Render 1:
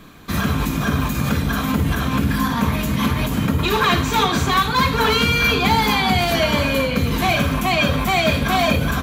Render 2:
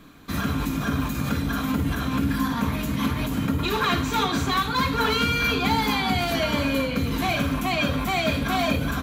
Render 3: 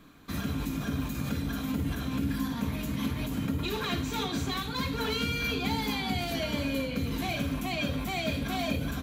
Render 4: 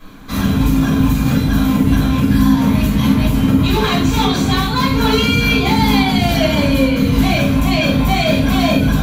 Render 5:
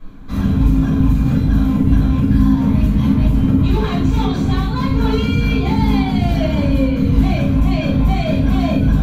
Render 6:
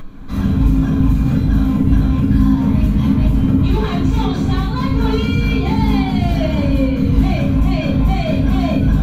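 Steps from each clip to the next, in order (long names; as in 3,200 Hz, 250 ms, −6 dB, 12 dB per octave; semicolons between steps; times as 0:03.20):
hollow resonant body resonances 280/1,400/4,000 Hz, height 8 dB, ringing for 95 ms; level −6.5 dB
dynamic equaliser 1,200 Hz, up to −8 dB, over −39 dBFS, Q 1.2; level −6 dB
rectangular room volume 230 cubic metres, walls furnished, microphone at 5.4 metres; level +5.5 dB
spectral tilt −2.5 dB per octave; level −7 dB
upward compression, threshold −25 dBFS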